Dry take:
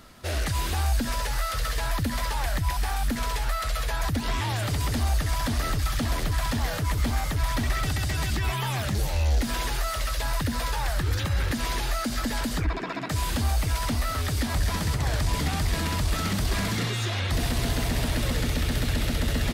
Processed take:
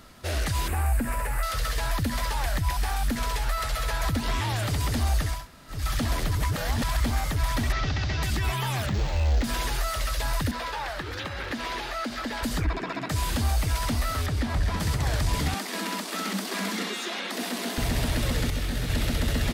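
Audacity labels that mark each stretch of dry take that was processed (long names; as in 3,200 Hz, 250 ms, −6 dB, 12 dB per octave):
0.680000	1.430000	flat-topped bell 4,500 Hz −15 dB 1.3 octaves
3.300000	3.840000	delay throw 270 ms, feedback 50%, level −8.5 dB
5.360000	5.780000	fill with room tone, crossfade 0.24 s
6.350000	7.000000	reverse
7.720000	8.230000	variable-slope delta modulation 32 kbit/s
8.860000	9.440000	linearly interpolated sample-rate reduction rate divided by 4×
10.510000	12.430000	three-way crossover with the lows and the highs turned down lows −14 dB, under 230 Hz, highs −13 dB, over 4,700 Hz
14.260000	14.800000	low-pass filter 2,700 Hz 6 dB per octave
15.540000	17.780000	Chebyshev high-pass filter 180 Hz, order 10
18.500000	18.900000	micro pitch shift up and down each way 15 cents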